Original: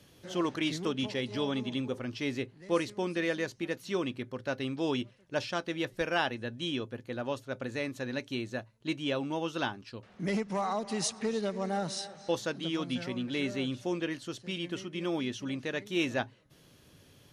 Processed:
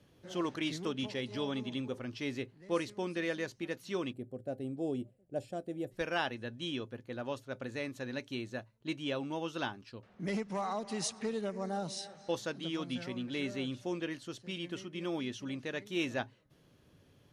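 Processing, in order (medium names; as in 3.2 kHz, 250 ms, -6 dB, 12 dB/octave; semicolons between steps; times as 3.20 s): 4.13–5.91 s: time-frequency box 810–6900 Hz -17 dB; 11.29–12.05 s: peaking EQ 6.6 kHz -> 1.1 kHz -14 dB 0.44 oct; tape noise reduction on one side only decoder only; trim -4 dB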